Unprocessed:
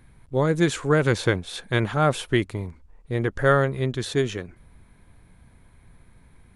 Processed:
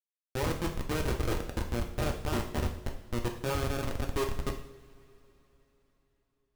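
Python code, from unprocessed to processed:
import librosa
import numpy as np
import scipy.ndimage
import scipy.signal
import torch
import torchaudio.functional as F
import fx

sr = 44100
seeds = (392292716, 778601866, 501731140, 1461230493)

y = fx.reverse_delay_fb(x, sr, ms=145, feedback_pct=69, wet_db=-6)
y = scipy.signal.sosfilt(scipy.signal.butter(2, 290.0, 'highpass', fs=sr, output='sos'), y)
y = fx.rider(y, sr, range_db=4, speed_s=0.5)
y = fx.air_absorb(y, sr, metres=110.0)
y = fx.schmitt(y, sr, flips_db=-18.5)
y = fx.rev_double_slope(y, sr, seeds[0], early_s=0.6, late_s=4.0, knee_db=-22, drr_db=2.0)
y = y * librosa.db_to_amplitude(-3.5)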